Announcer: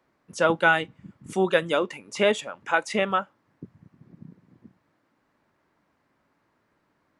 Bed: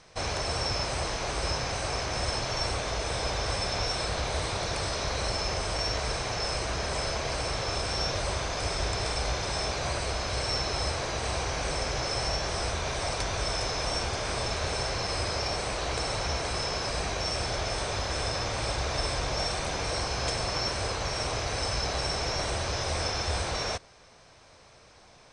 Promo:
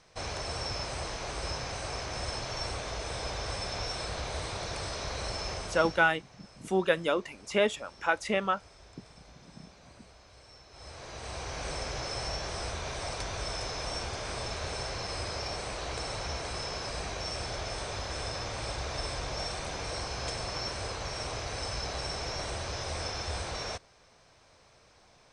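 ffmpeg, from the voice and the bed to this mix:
-filter_complex "[0:a]adelay=5350,volume=-4.5dB[a];[1:a]volume=14dB,afade=t=out:st=5.5:d=0.62:silence=0.105925,afade=t=in:st=10.7:d=0.99:silence=0.105925[b];[a][b]amix=inputs=2:normalize=0"

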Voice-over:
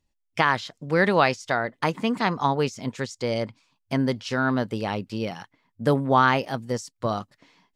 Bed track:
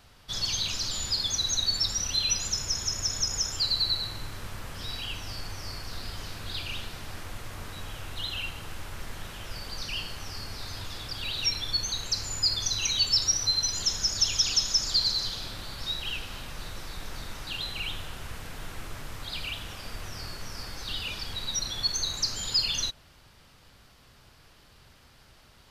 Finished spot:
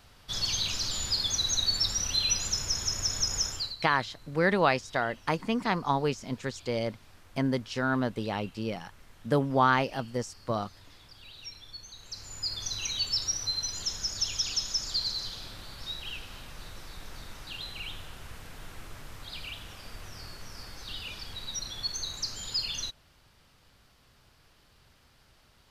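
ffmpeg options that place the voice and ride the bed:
-filter_complex "[0:a]adelay=3450,volume=-4.5dB[a];[1:a]volume=10.5dB,afade=t=out:st=3.44:d=0.32:silence=0.158489,afade=t=in:st=11.96:d=0.76:silence=0.281838[b];[a][b]amix=inputs=2:normalize=0"

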